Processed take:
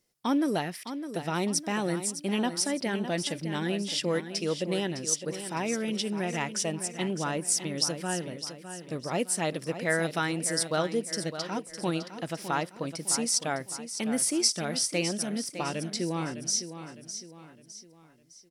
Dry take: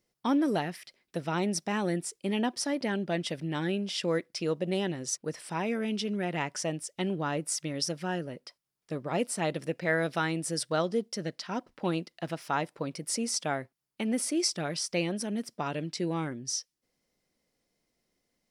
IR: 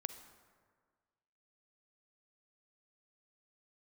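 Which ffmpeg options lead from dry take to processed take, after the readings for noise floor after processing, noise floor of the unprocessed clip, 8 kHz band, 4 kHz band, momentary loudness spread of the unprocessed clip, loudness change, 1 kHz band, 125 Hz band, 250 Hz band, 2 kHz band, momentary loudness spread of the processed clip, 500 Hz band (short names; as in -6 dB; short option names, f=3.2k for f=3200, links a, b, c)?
-54 dBFS, -83 dBFS, +6.0 dB, +4.0 dB, 8 LU, +2.0 dB, +0.5 dB, +0.5 dB, +0.5 dB, +1.5 dB, 10 LU, +0.5 dB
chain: -af "equalizer=f=11k:w=0.36:g=7,aecho=1:1:608|1216|1824|2432:0.299|0.125|0.0527|0.0221"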